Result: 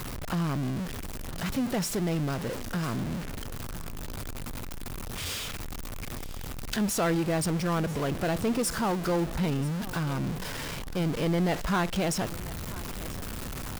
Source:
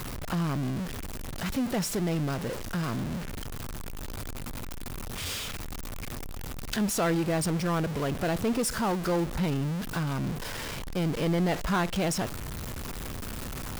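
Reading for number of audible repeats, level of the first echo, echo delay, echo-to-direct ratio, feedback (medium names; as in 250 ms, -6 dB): 2, -18.0 dB, 989 ms, -18.0 dB, 15%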